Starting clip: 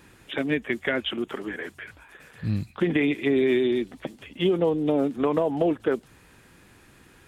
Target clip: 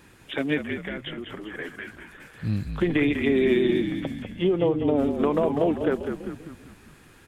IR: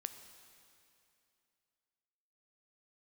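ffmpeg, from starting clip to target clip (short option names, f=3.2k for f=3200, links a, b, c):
-filter_complex "[0:a]asettb=1/sr,asplit=3[a][b][c];[a]atrim=end=0.614[d];[b]atrim=start=0.61:end=1.55,asetpts=PTS-STARTPTS,afade=t=in:d=0.004:c=qsin,afade=t=out:st=0.936:d=0.004:c=qsin,acompressor=threshold=-37dB:ratio=2.5[e];[c]atrim=start=1.546[f];[d][e]acrossfade=d=0.004:c1=hsin:c2=qsin[g];[g][f]acrossfade=d=0.004:c1=qsin:c2=hsin,asettb=1/sr,asplit=3[h][i][j];[h]atrim=end=4.224[k];[i]atrim=start=4.22:end=4.96,asetpts=PTS-STARTPTS,afade=t=in:d=0.004:c=qsin,afade=t=out:st=0.736:d=0.004:c=qsin,lowpass=f=2k:p=1[l];[j]atrim=start=4.956[m];[k][l]acrossfade=d=0.004:c1=hsin:c2=qsin[n];[n][m]acrossfade=d=0.004:c1=qsin:c2=hsin,asplit=7[o][p][q][r][s][t][u];[p]adelay=197,afreqshift=-47,volume=-7dB[v];[q]adelay=394,afreqshift=-94,volume=-12.7dB[w];[r]adelay=591,afreqshift=-141,volume=-18.4dB[x];[s]adelay=788,afreqshift=-188,volume=-24dB[y];[t]adelay=985,afreqshift=-235,volume=-29.7dB[z];[u]adelay=1182,afreqshift=-282,volume=-35.4dB[aa];[o][v][w][x][y][z][aa]amix=inputs=7:normalize=0"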